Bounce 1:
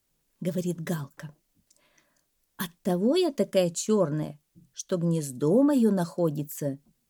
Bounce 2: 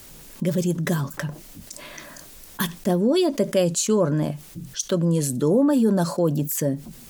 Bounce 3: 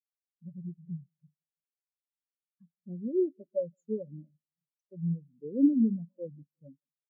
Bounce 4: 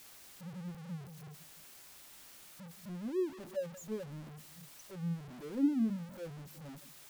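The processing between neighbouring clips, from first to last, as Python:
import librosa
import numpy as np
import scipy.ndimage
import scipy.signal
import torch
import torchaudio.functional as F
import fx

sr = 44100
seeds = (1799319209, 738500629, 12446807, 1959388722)

y1 = fx.env_flatten(x, sr, amount_pct=50)
y1 = y1 * 10.0 ** (2.0 / 20.0)
y2 = fx.echo_feedback(y1, sr, ms=166, feedback_pct=58, wet_db=-13.0)
y2 = fx.spectral_expand(y2, sr, expansion=4.0)
y2 = y2 * 10.0 ** (-5.0 / 20.0)
y3 = y2 + 0.5 * 10.0 ** (-36.0 / 20.0) * np.sign(y2)
y3 = fx.notch(y3, sr, hz=470.0, q=13.0)
y3 = y3 * 10.0 ** (-7.5 / 20.0)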